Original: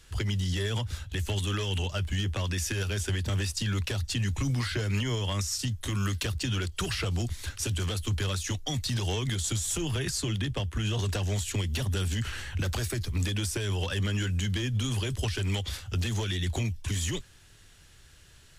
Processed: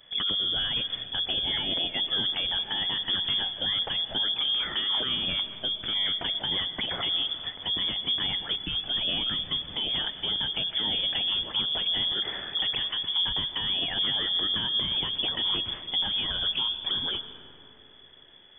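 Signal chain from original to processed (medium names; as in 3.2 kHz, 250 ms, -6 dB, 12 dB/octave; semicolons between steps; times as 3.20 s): frequency inversion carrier 3.4 kHz; on a send: reverberation RT60 3.4 s, pre-delay 80 ms, DRR 11 dB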